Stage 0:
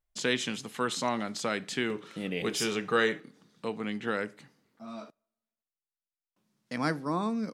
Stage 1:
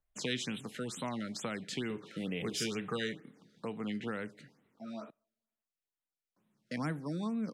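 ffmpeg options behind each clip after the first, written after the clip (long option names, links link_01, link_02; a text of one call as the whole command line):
ffmpeg -i in.wav -filter_complex "[0:a]highshelf=frequency=5500:gain=-8,acrossover=split=210|3000[link_01][link_02][link_03];[link_02]acompressor=threshold=-40dB:ratio=3[link_04];[link_01][link_04][link_03]amix=inputs=3:normalize=0,afftfilt=real='re*(1-between(b*sr/1024,860*pow(5900/860,0.5+0.5*sin(2*PI*2.2*pts/sr))/1.41,860*pow(5900/860,0.5+0.5*sin(2*PI*2.2*pts/sr))*1.41))':imag='im*(1-between(b*sr/1024,860*pow(5900/860,0.5+0.5*sin(2*PI*2.2*pts/sr))/1.41,860*pow(5900/860,0.5+0.5*sin(2*PI*2.2*pts/sr))*1.41))':win_size=1024:overlap=0.75" out.wav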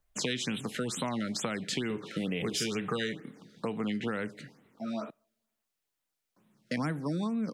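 ffmpeg -i in.wav -af "acompressor=threshold=-38dB:ratio=4,volume=8.5dB" out.wav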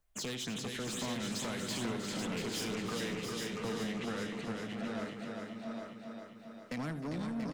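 ffmpeg -i in.wav -filter_complex "[0:a]asplit=2[link_01][link_02];[link_02]aecho=0:1:400|800|1200|1600|2000|2400|2800|3200:0.447|0.264|0.155|0.0917|0.0541|0.0319|0.0188|0.0111[link_03];[link_01][link_03]amix=inputs=2:normalize=0,asoftclip=type=tanh:threshold=-33.5dB,asplit=2[link_04][link_05];[link_05]aecho=0:1:78|311|493|684|830:0.188|0.211|0.119|0.447|0.531[link_06];[link_04][link_06]amix=inputs=2:normalize=0,volume=-1.5dB" out.wav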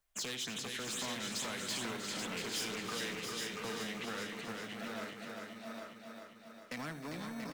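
ffmpeg -i in.wav -filter_complex "[0:a]lowshelf=frequency=410:gain=-10.5,acrossover=split=550|2500[link_01][link_02][link_03];[link_01]acrusher=samples=22:mix=1:aa=0.000001[link_04];[link_04][link_02][link_03]amix=inputs=3:normalize=0,volume=1.5dB" out.wav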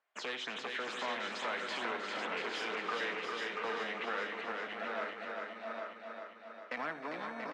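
ffmpeg -i in.wav -af "highpass=490,lowpass=2100,volume=7.5dB" out.wav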